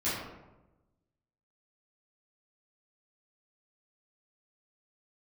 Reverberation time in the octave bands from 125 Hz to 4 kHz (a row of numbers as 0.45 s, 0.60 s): 1.4 s, 1.2 s, 1.1 s, 0.95 s, 0.75 s, 0.55 s